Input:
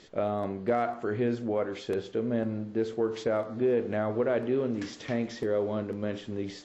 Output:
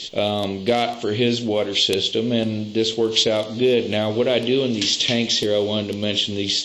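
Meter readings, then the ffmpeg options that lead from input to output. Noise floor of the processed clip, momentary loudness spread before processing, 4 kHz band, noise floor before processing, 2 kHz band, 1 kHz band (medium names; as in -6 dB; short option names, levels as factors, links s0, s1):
-32 dBFS, 6 LU, +28.5 dB, -47 dBFS, +11.5 dB, +6.0 dB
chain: -af "highshelf=f=2200:t=q:w=3:g=13.5,volume=2.66"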